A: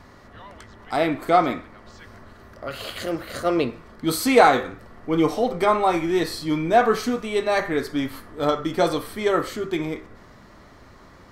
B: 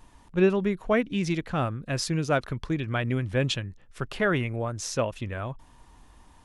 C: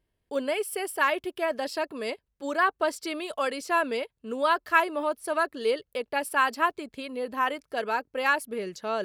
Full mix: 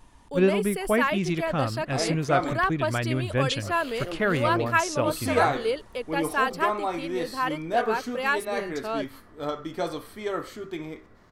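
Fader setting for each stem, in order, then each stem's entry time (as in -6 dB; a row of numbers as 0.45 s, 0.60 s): -9.0 dB, 0.0 dB, -1.0 dB; 1.00 s, 0.00 s, 0.00 s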